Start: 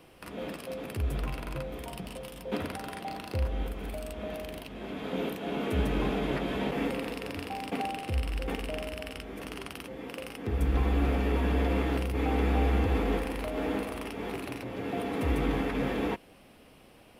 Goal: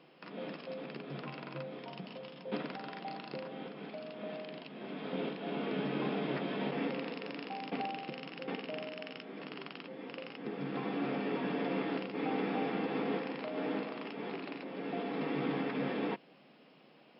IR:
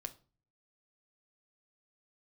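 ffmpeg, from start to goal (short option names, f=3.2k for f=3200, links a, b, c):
-af "afftfilt=real='re*between(b*sr/4096,130,5400)':imag='im*between(b*sr/4096,130,5400)':win_size=4096:overlap=0.75,volume=-4.5dB"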